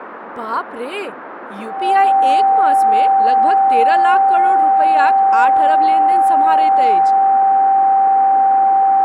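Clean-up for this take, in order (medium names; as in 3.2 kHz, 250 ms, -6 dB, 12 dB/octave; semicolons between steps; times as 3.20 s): band-stop 780 Hz, Q 30; noise print and reduce 30 dB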